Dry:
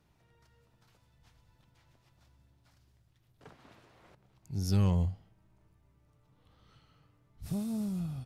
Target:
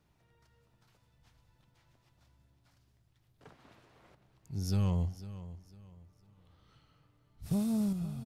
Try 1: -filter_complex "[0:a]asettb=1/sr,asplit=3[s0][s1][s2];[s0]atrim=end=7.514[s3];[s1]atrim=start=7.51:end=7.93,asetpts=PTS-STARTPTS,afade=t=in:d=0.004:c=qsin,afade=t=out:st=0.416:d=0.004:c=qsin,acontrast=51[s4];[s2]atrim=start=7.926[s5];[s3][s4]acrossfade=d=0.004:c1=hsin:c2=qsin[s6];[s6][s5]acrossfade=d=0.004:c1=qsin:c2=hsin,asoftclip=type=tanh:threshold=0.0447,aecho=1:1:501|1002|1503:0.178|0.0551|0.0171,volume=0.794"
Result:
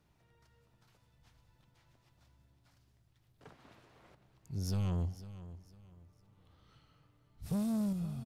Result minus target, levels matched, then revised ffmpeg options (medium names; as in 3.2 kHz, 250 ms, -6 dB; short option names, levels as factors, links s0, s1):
saturation: distortion +12 dB
-filter_complex "[0:a]asettb=1/sr,asplit=3[s0][s1][s2];[s0]atrim=end=7.514[s3];[s1]atrim=start=7.51:end=7.93,asetpts=PTS-STARTPTS,afade=t=in:d=0.004:c=qsin,afade=t=out:st=0.416:d=0.004:c=qsin,acontrast=51[s4];[s2]atrim=start=7.926[s5];[s3][s4]acrossfade=d=0.004:c1=hsin:c2=qsin[s6];[s6][s5]acrossfade=d=0.004:c1=qsin:c2=hsin,asoftclip=type=tanh:threshold=0.133,aecho=1:1:501|1002|1503:0.178|0.0551|0.0171,volume=0.794"